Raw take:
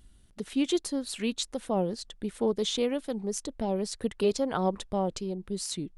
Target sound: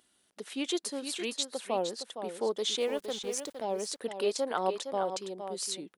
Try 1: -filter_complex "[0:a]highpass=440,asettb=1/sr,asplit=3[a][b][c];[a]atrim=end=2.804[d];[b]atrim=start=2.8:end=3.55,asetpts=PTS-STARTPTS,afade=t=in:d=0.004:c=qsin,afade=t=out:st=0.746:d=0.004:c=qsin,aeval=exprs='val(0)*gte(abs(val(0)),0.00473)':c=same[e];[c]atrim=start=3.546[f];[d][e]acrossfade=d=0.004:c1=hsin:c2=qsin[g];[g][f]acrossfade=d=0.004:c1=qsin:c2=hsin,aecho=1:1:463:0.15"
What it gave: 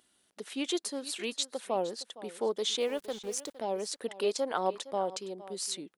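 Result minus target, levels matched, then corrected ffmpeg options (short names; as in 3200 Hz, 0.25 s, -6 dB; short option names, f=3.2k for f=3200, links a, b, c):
echo-to-direct -8 dB
-filter_complex "[0:a]highpass=440,asettb=1/sr,asplit=3[a][b][c];[a]atrim=end=2.804[d];[b]atrim=start=2.8:end=3.55,asetpts=PTS-STARTPTS,afade=t=in:d=0.004:c=qsin,afade=t=out:st=0.746:d=0.004:c=qsin,aeval=exprs='val(0)*gte(abs(val(0)),0.00473)':c=same[e];[c]atrim=start=3.546[f];[d][e]acrossfade=d=0.004:c1=hsin:c2=qsin[g];[g][f]acrossfade=d=0.004:c1=qsin:c2=hsin,aecho=1:1:463:0.376"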